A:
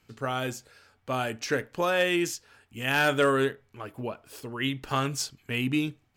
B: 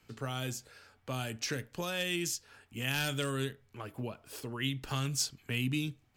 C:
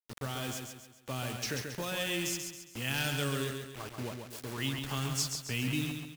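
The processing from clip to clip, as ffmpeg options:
-filter_complex "[0:a]acrossover=split=200|3000[a][b][c];[b]acompressor=threshold=-42dB:ratio=3[d];[a][d][c]amix=inputs=3:normalize=0"
-af "acrusher=bits=6:mix=0:aa=0.000001,aecho=1:1:136|272|408|544|680:0.531|0.228|0.0982|0.0422|0.0181,volume=-1dB"

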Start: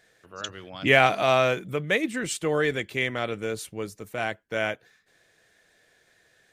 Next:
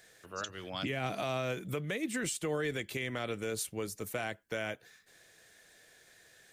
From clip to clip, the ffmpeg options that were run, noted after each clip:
-filter_complex "[0:a]highshelf=f=5.3k:g=9.5,acrossover=split=360[a][b];[b]acompressor=threshold=-26dB:ratio=6[c];[a][c]amix=inputs=2:normalize=0,alimiter=level_in=1dB:limit=-24dB:level=0:latency=1:release=247,volume=-1dB"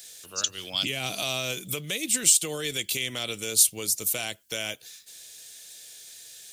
-af "aexciter=amount=5.6:drive=6.5:freq=2.6k"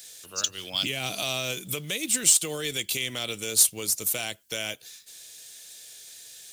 -af "acrusher=bits=5:mode=log:mix=0:aa=0.000001"

